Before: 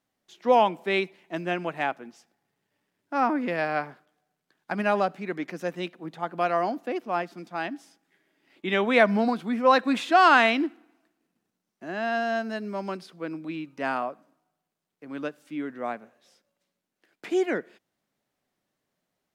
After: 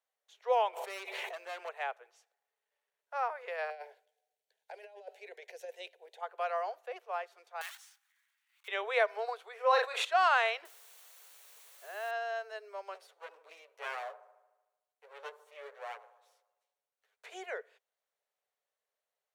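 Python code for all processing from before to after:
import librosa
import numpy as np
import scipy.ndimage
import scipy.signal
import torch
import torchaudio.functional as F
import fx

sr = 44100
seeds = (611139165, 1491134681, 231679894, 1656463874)

y = fx.chain(x, sr, fx.overload_stage(gain_db=28.0),
    fx.env_flatten(amount_pct=100), at=(0.73, 1.69))
y = fx.chain(y, sr, fx.over_compress(threshold_db=-30.0, ratio=-0.5),
    fx.fixed_phaser(hz=500.0, stages=4), at=(3.7, 6.21))
y = fx.chain(y, sr, fx.block_float(bits=3),
    fx.cheby2_highpass(hz=420.0, order=4, stop_db=50),
    fx.transient(attack_db=-11, sustain_db=8), at=(7.61, 8.68))
y = fx.chain(y, sr, fx.low_shelf(hz=120.0, db=11.0),
    fx.doubler(ms=36.0, db=-5.5),
    fx.sustainer(db_per_s=58.0), at=(9.55, 10.05))
y = fx.chain(y, sr, fx.hum_notches(base_hz=50, count=7),
    fx.quant_dither(seeds[0], bits=8, dither='triangular'), at=(10.65, 12.11))
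y = fx.chain(y, sr, fx.lower_of_two(delay_ms=9.4),
    fx.echo_wet_bandpass(ms=75, feedback_pct=62, hz=600.0, wet_db=-14), at=(12.94, 17.26))
y = scipy.signal.sosfilt(scipy.signal.butter(16, 420.0, 'highpass', fs=sr, output='sos'), y)
y = fx.notch(y, sr, hz=5000.0, q=10.0)
y = F.gain(torch.from_numpy(y), -9.0).numpy()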